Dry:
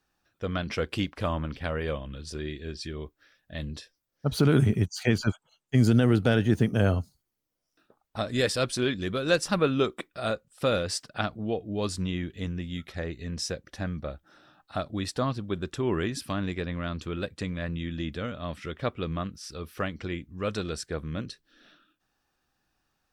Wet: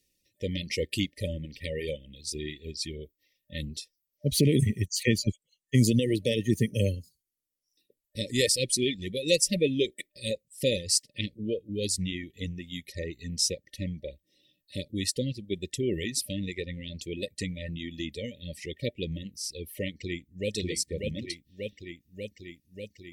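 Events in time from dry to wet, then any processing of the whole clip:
19.95–20.53 echo throw 0.59 s, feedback 75%, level -2 dB
whole clip: FFT band-reject 600–1800 Hz; reverb removal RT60 2 s; bell 11000 Hz +12 dB 1.9 oct

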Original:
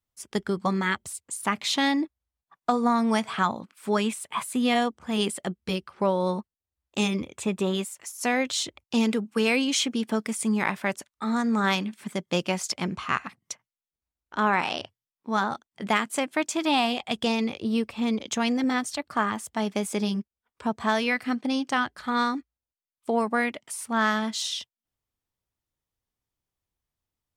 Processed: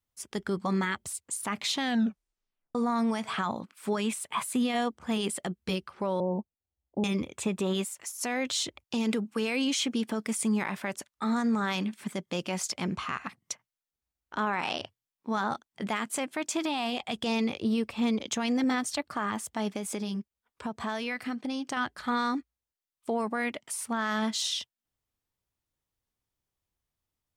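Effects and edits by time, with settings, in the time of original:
1.8 tape stop 0.95 s
6.2–7.04 steep low-pass 860 Hz 48 dB/oct
19.72–21.77 compressor 3:1, threshold -31 dBFS
whole clip: limiter -20 dBFS

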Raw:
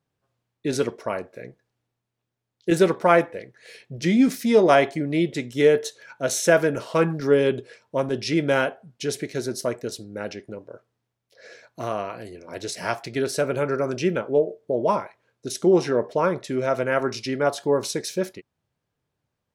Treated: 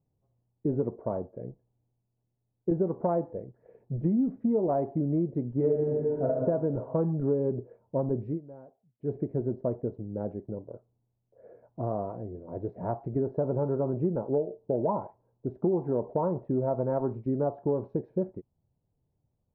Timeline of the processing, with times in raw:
5.55–6.27 reverb throw, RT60 1.5 s, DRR -4.5 dB
8.24–9.13 dip -23.5 dB, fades 0.15 s
13.25–17.19 bell 910 Hz +6 dB 0.47 oct
whole clip: Chebyshev low-pass 870 Hz, order 3; tilt -3 dB/oct; compressor 6:1, threshold -19 dBFS; gain -4.5 dB

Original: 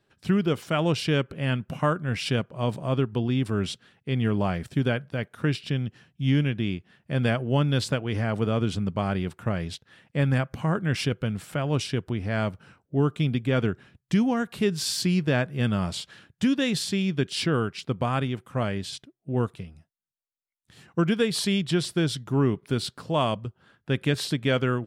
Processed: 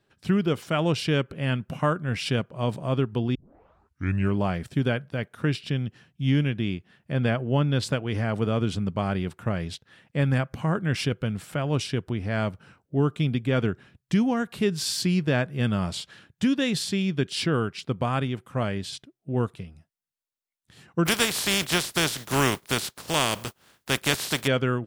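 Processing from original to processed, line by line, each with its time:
3.35 tape start 1.02 s
7.12–7.83 high shelf 5200 Hz -9.5 dB
21.05–24.46 spectral contrast lowered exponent 0.38

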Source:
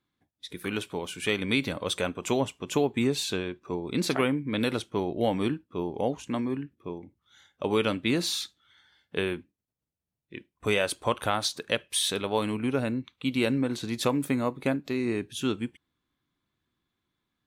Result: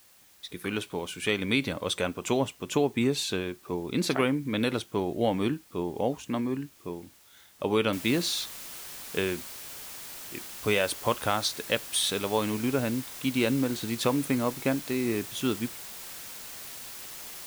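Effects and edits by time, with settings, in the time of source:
7.93 noise floor step -58 dB -42 dB

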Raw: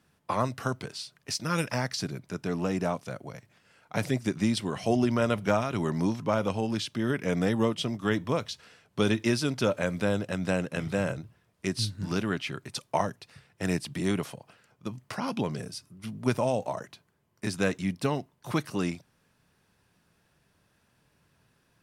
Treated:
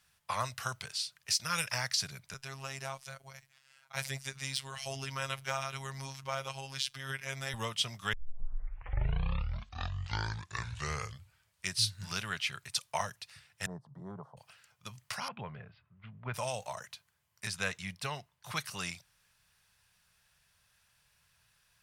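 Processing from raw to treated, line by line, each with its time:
2.34–7.54 robotiser 135 Hz
8.13 tape start 3.61 s
13.66–14.37 elliptic band-pass 120–1000 Hz
15.28–16.34 Gaussian blur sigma 4.1 samples
17.47–18.57 high shelf 4300 Hz -6.5 dB
whole clip: de-esser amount 55%; passive tone stack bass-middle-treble 10-0-10; gain +4.5 dB

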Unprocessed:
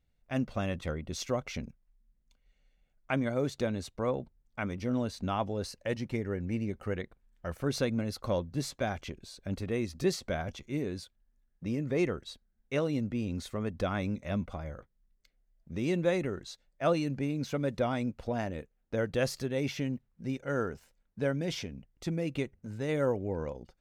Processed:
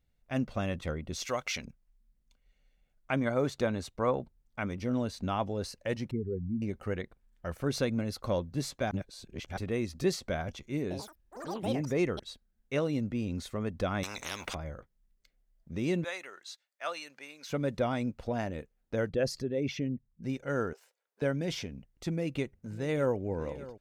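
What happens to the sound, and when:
1.25–1.65 tilt shelf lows -9 dB, about 680 Hz
3.2–4.22 dynamic EQ 1100 Hz, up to +6 dB, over -45 dBFS, Q 0.83
6.11–6.62 spectral contrast raised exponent 2.7
8.91–9.57 reverse
10.82–12.75 echoes that change speed 86 ms, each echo +7 st, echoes 3, each echo -6 dB
14.03–14.55 spectral compressor 10:1
16.04–17.5 HPF 1100 Hz
19.09–20.23 formant sharpening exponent 1.5
20.73–21.22 Chebyshev high-pass 410 Hz, order 4
22.11–23.17 echo throw 0.6 s, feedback 60%, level -17 dB

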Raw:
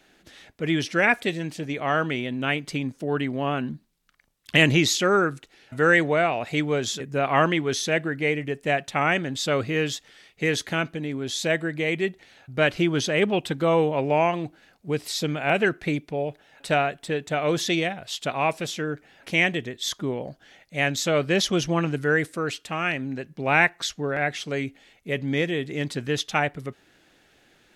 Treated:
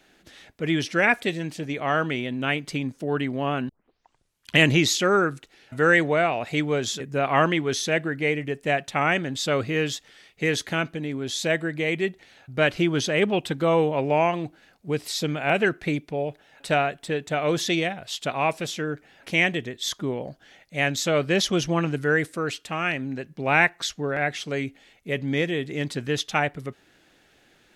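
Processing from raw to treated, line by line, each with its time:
3.69 tape start 0.86 s

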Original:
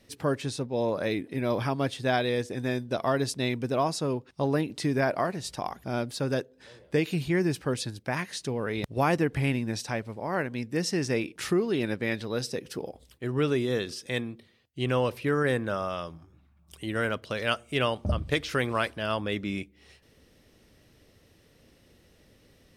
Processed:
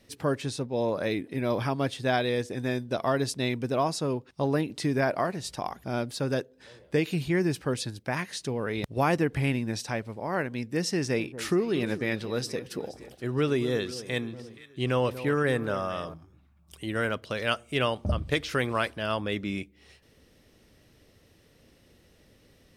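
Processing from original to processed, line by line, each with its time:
10.95–16.14 echo with dull and thin repeats by turns 0.237 s, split 1200 Hz, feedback 60%, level -13 dB

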